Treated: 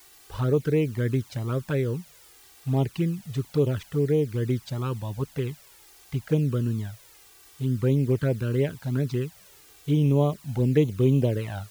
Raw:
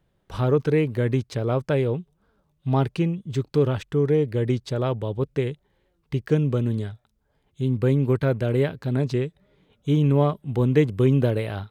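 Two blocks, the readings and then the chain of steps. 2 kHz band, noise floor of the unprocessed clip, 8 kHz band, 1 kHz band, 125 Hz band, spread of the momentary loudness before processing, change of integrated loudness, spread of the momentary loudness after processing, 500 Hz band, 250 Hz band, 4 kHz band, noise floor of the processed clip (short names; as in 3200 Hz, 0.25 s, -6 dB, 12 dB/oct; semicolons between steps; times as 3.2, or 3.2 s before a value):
-4.5 dB, -70 dBFS, n/a, -6.0 dB, -2.0 dB, 10 LU, -2.5 dB, 11 LU, -3.5 dB, -2.5 dB, -3.0 dB, -53 dBFS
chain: requantised 8-bit, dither triangular; envelope flanger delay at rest 2.8 ms, full sweep at -15 dBFS; gain -1.5 dB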